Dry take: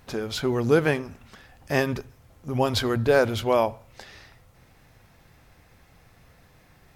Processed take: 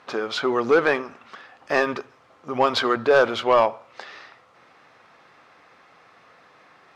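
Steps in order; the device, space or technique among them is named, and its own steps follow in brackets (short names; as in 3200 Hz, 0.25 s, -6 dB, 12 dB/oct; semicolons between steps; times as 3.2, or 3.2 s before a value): intercom (BPF 360–4200 Hz; bell 1200 Hz +8 dB 0.45 oct; soft clip -13.5 dBFS, distortion -15 dB); gain +5.5 dB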